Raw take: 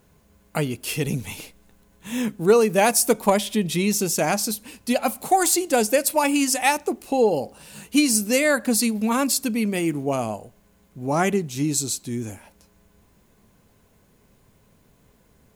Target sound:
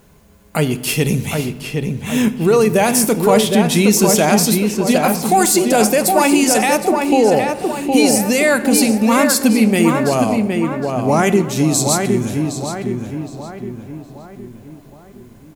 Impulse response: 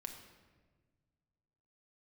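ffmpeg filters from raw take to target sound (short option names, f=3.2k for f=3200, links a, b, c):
-filter_complex "[0:a]alimiter=limit=-14.5dB:level=0:latency=1:release=22,asplit=2[a][b];[b]adelay=765,lowpass=f=2.6k:p=1,volume=-4dB,asplit=2[c][d];[d]adelay=765,lowpass=f=2.6k:p=1,volume=0.49,asplit=2[e][f];[f]adelay=765,lowpass=f=2.6k:p=1,volume=0.49,asplit=2[g][h];[h]adelay=765,lowpass=f=2.6k:p=1,volume=0.49,asplit=2[i][j];[j]adelay=765,lowpass=f=2.6k:p=1,volume=0.49,asplit=2[k][l];[l]adelay=765,lowpass=f=2.6k:p=1,volume=0.49[m];[a][c][e][g][i][k][m]amix=inputs=7:normalize=0,asplit=2[n][o];[1:a]atrim=start_sample=2205[p];[o][p]afir=irnorm=-1:irlink=0,volume=-1dB[q];[n][q]amix=inputs=2:normalize=0,volume=5dB"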